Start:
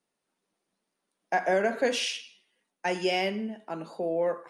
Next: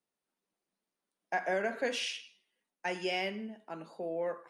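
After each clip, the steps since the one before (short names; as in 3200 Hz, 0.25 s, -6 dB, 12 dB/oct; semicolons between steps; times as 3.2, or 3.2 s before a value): dynamic EQ 2000 Hz, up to +4 dB, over -44 dBFS, Q 0.76; gain -8 dB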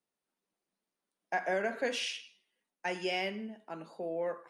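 nothing audible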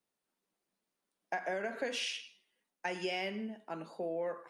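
compressor, threshold -34 dBFS, peak gain reduction 7.5 dB; gain +1.5 dB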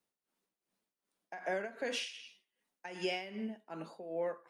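tremolo 2.6 Hz, depth 74%; gain +1.5 dB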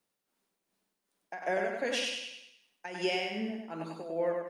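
feedback echo 98 ms, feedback 45%, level -3.5 dB; gain +4 dB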